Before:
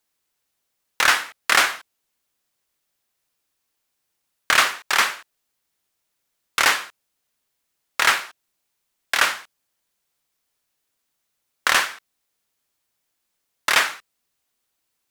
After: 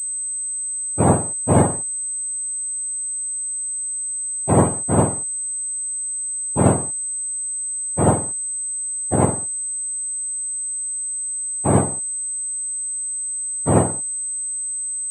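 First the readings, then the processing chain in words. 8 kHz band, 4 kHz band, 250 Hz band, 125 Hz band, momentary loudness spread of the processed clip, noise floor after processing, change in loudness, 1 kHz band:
+13.0 dB, under -25 dB, +24.0 dB, no reading, 5 LU, -26 dBFS, -1.0 dB, 0.0 dB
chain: spectrum inverted on a logarithmic axis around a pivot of 1.1 kHz; class-D stage that switches slowly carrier 8.2 kHz; trim -1 dB

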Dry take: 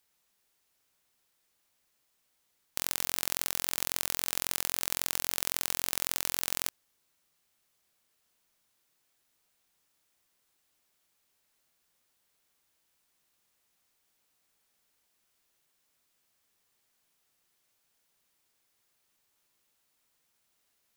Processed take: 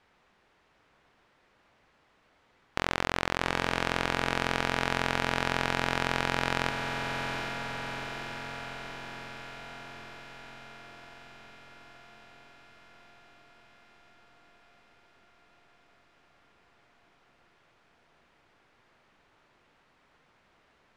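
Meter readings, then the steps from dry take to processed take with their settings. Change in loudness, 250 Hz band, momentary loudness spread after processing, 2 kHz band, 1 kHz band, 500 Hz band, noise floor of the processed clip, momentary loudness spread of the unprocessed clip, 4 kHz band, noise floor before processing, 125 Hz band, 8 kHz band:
-0.5 dB, +14.5 dB, 19 LU, +11.0 dB, +13.5 dB, +14.0 dB, -67 dBFS, 2 LU, +2.0 dB, -76 dBFS, +15.5 dB, -11.5 dB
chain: low-pass 1.9 kHz 12 dB/octave; on a send: echo that smears into a reverb 785 ms, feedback 68%, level -11 dB; on the sum: loudness maximiser +25 dB; trim -6.5 dB

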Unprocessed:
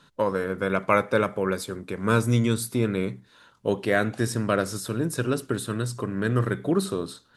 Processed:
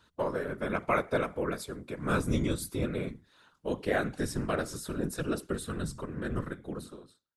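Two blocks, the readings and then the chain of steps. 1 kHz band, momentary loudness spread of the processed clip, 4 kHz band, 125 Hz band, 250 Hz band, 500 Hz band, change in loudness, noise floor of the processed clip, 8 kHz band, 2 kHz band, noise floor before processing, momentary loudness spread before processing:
-6.5 dB, 11 LU, -7.5 dB, -9.0 dB, -7.5 dB, -7.5 dB, -7.5 dB, -69 dBFS, -7.5 dB, -7.0 dB, -59 dBFS, 8 LU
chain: fade out at the end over 1.51 s; whisper effect; trim -7 dB

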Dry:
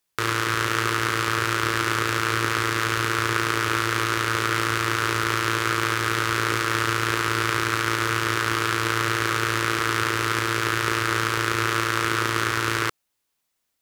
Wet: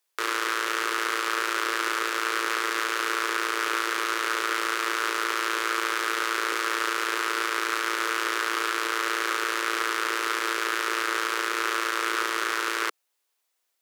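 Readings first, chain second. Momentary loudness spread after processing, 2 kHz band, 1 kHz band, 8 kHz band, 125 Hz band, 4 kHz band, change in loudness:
0 LU, -3.0 dB, -3.0 dB, -3.0 dB, under -40 dB, -3.0 dB, -3.0 dB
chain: high-pass 370 Hz 24 dB/octave; peak limiter -10.5 dBFS, peak gain reduction 6 dB

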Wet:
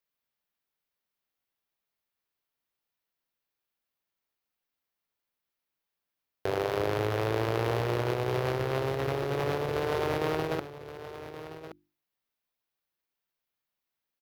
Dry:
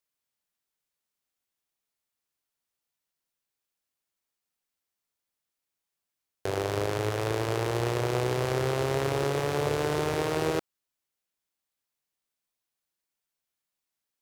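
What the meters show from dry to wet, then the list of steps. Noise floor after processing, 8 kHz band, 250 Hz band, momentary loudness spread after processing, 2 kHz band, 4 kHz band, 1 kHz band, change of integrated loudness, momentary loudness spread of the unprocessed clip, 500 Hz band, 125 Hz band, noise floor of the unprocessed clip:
under -85 dBFS, -9.5 dB, -1.5 dB, 14 LU, -1.0 dB, -3.0 dB, -0.5 dB, -1.5 dB, 3 LU, -1.0 dB, -1.5 dB, under -85 dBFS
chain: peaking EQ 8 kHz -12 dB 1 oct; hum notches 50/100/150/200/250/300/350 Hz; compressor with a negative ratio -29 dBFS, ratio -0.5; delay 1123 ms -13 dB

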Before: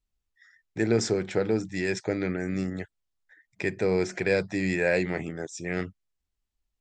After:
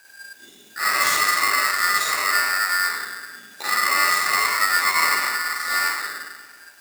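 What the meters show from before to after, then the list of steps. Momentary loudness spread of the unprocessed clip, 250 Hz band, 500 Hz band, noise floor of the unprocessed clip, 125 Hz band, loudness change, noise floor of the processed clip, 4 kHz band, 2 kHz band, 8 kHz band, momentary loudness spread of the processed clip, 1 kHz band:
10 LU, -16.5 dB, -11.5 dB, -83 dBFS, under -20 dB, +9.0 dB, -49 dBFS, +18.0 dB, +14.0 dB, +16.0 dB, 13 LU, +21.5 dB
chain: spectral sustain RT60 1.05 s; in parallel at -3 dB: upward compressor, threshold -26 dBFS; on the sum: crackle 550 per s -39 dBFS; touch-sensitive phaser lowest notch 380 Hz, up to 2.9 kHz, full sweep at -19 dBFS; hard clipper -22 dBFS, distortion -7 dB; Butterworth band-stop 1.6 kHz, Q 2.1; bucket-brigade echo 103 ms, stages 1024, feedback 59%, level -12 dB; Schroeder reverb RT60 0.36 s, DRR -5.5 dB; polarity switched at an audio rate 1.6 kHz; trim -2.5 dB

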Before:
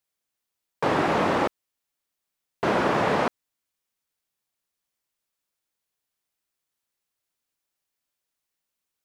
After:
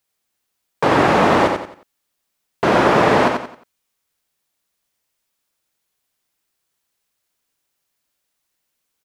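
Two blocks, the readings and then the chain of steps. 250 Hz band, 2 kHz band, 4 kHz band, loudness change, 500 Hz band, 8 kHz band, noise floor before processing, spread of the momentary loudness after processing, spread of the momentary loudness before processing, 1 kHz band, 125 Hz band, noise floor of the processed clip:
+8.5 dB, +9.0 dB, +8.5 dB, +8.5 dB, +9.0 dB, +9.0 dB, -84 dBFS, 8 LU, 7 LU, +9.0 dB, +9.0 dB, -75 dBFS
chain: feedback delay 89 ms, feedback 33%, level -5 dB; trim +7.5 dB

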